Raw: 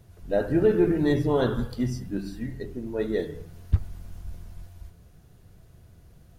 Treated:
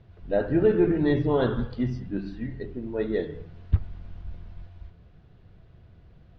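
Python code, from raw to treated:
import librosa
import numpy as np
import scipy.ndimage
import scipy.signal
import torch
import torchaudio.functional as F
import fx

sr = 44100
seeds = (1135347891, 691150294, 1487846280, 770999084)

y = scipy.signal.sosfilt(scipy.signal.butter(4, 3800.0, 'lowpass', fs=sr, output='sos'), x)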